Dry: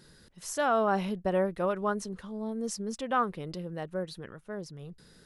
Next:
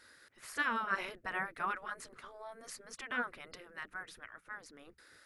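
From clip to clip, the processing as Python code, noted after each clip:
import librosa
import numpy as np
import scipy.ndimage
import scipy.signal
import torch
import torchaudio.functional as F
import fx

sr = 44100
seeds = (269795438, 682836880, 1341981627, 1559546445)

y = fx.spec_gate(x, sr, threshold_db=-10, keep='weak')
y = fx.band_shelf(y, sr, hz=1700.0, db=8.5, octaves=1.2)
y = F.gain(torch.from_numpy(y), -3.0).numpy()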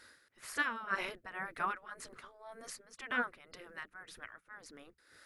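y = x * (1.0 - 0.72 / 2.0 + 0.72 / 2.0 * np.cos(2.0 * np.pi * 1.9 * (np.arange(len(x)) / sr)))
y = F.gain(torch.from_numpy(y), 2.5).numpy()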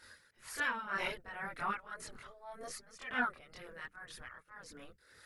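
y = fx.transient(x, sr, attack_db=-7, sustain_db=-2)
y = fx.chorus_voices(y, sr, voices=6, hz=0.69, base_ms=24, depth_ms=1.2, mix_pct=60)
y = F.gain(torch.from_numpy(y), 5.5).numpy()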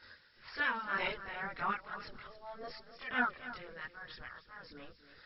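y = x + 10.0 ** (-13.5 / 20.0) * np.pad(x, (int(280 * sr / 1000.0), 0))[:len(x)]
y = fx.dmg_noise_colour(y, sr, seeds[0], colour='violet', level_db=-56.0)
y = fx.brickwall_lowpass(y, sr, high_hz=5500.0)
y = F.gain(torch.from_numpy(y), 1.5).numpy()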